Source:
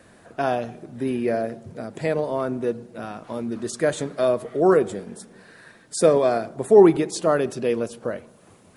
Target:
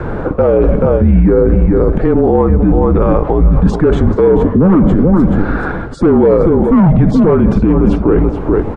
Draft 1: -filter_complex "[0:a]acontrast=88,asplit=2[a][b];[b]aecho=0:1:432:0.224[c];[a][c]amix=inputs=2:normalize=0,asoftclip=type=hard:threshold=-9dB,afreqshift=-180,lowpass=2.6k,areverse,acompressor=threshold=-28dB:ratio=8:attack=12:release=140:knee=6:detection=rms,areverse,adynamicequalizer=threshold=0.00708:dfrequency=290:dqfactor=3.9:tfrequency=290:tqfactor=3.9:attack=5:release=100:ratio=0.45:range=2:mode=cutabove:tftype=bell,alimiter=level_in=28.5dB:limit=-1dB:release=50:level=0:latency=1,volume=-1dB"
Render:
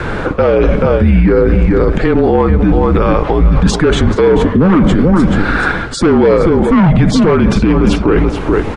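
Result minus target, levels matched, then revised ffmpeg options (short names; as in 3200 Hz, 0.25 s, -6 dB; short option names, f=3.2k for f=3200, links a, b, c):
2000 Hz band +9.0 dB
-filter_complex "[0:a]acontrast=88,asplit=2[a][b];[b]aecho=0:1:432:0.224[c];[a][c]amix=inputs=2:normalize=0,asoftclip=type=hard:threshold=-9dB,afreqshift=-180,lowpass=950,areverse,acompressor=threshold=-28dB:ratio=8:attack=12:release=140:knee=6:detection=rms,areverse,adynamicequalizer=threshold=0.00708:dfrequency=290:dqfactor=3.9:tfrequency=290:tqfactor=3.9:attack=5:release=100:ratio=0.45:range=2:mode=cutabove:tftype=bell,alimiter=level_in=28.5dB:limit=-1dB:release=50:level=0:latency=1,volume=-1dB"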